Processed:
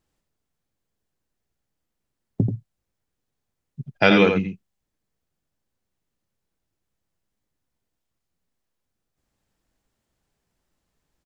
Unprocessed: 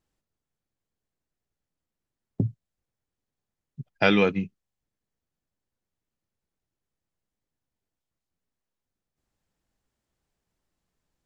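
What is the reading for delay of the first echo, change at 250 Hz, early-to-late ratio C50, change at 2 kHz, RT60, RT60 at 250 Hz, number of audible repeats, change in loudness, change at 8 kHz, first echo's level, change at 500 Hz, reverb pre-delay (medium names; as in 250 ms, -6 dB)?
85 ms, +5.0 dB, no reverb, +5.0 dB, no reverb, no reverb, 1, +5.0 dB, no reading, -6.0 dB, +5.0 dB, no reverb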